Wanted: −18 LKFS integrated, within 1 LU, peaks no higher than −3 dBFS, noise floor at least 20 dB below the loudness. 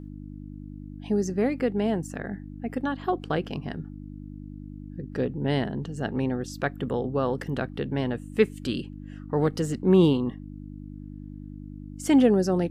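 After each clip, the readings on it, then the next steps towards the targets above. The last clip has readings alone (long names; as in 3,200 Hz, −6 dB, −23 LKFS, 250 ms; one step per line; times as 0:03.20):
mains hum 50 Hz; hum harmonics up to 300 Hz; level of the hum −38 dBFS; integrated loudness −26.5 LKFS; sample peak −7.5 dBFS; target loudness −18.0 LKFS
→ hum removal 50 Hz, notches 6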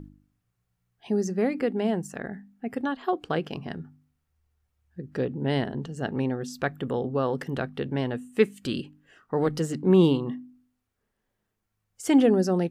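mains hum none found; integrated loudness −27.0 LKFS; sample peak −7.5 dBFS; target loudness −18.0 LKFS
→ level +9 dB
brickwall limiter −3 dBFS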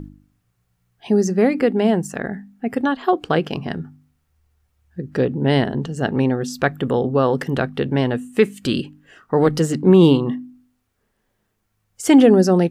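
integrated loudness −18.5 LKFS; sample peak −3.0 dBFS; background noise floor −71 dBFS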